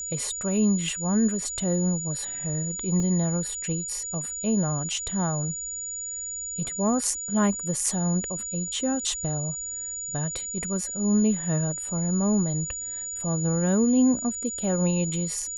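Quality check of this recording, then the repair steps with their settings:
whine 6.9 kHz -31 dBFS
3.00 s: dropout 2.3 ms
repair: band-stop 6.9 kHz, Q 30; interpolate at 3.00 s, 2.3 ms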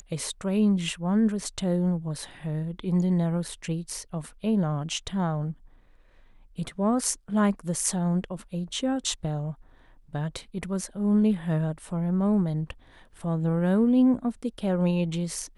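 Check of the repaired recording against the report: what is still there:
nothing left

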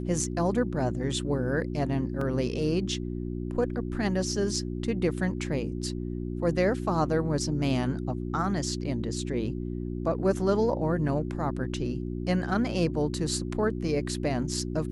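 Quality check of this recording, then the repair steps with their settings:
hum 60 Hz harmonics 6 -33 dBFS
2.21 s: dropout 3.5 ms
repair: de-hum 60 Hz, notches 6; interpolate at 2.21 s, 3.5 ms

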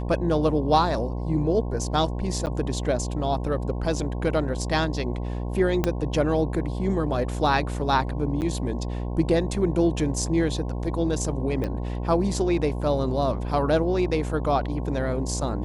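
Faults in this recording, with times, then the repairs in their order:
buzz 60 Hz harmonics 18 -29 dBFS
2.46–2.47 s: dropout 9.2 ms
5.84 s: pop -9 dBFS
8.41–8.42 s: dropout 9.1 ms
11.64 s: pop -18 dBFS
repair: de-click; de-hum 60 Hz, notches 18; interpolate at 2.46 s, 9.2 ms; interpolate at 8.41 s, 9.1 ms

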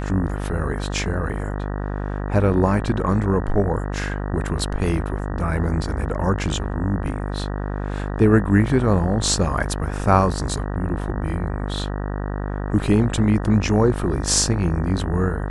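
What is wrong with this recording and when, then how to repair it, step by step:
buzz 50 Hz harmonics 38 -26 dBFS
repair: de-hum 50 Hz, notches 38

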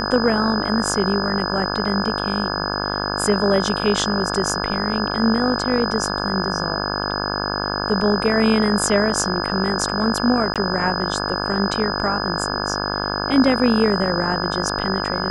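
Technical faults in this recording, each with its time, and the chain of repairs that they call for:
buzz 50 Hz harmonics 34 -25 dBFS
whine 5 kHz -27 dBFS
10.54–10.56 s: dropout 17 ms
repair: band-stop 5 kHz, Q 30; de-hum 50 Hz, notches 34; interpolate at 10.54 s, 17 ms

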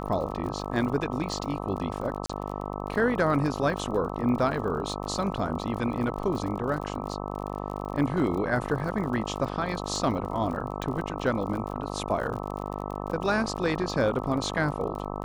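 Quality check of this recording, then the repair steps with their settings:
buzz 50 Hz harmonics 26 -34 dBFS
crackle 42 per s -35 dBFS
2.26–2.29 s: dropout 35 ms
10.82 s: pop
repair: de-click; de-hum 50 Hz, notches 26; interpolate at 2.26 s, 35 ms

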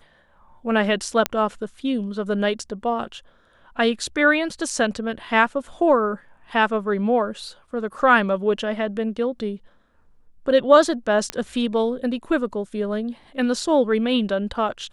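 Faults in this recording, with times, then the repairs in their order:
1.26 s: pop -5 dBFS
11.30 s: pop -10 dBFS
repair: de-click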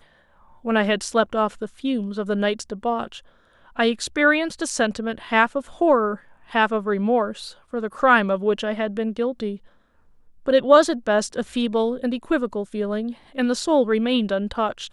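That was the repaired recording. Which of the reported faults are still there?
nothing left

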